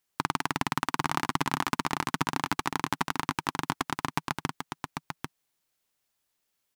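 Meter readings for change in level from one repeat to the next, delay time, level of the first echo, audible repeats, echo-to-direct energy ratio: no regular repeats, 794 ms, -5.5 dB, 1, -5.5 dB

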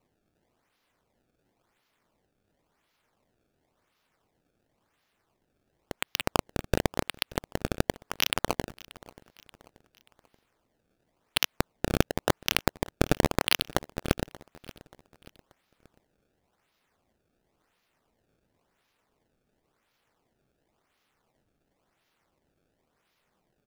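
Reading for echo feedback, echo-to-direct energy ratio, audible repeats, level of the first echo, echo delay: 45%, -20.0 dB, 3, -21.0 dB, 582 ms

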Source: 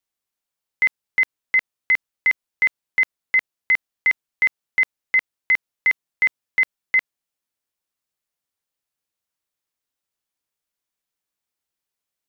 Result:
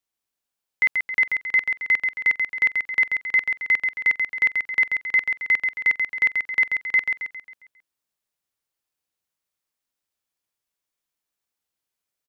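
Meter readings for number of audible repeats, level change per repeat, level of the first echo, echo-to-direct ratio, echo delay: 5, -7.0 dB, -5.0 dB, -4.0 dB, 135 ms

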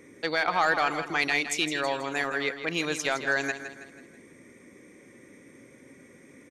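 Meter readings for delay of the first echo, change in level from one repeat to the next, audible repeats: 162 ms, -7.0 dB, 4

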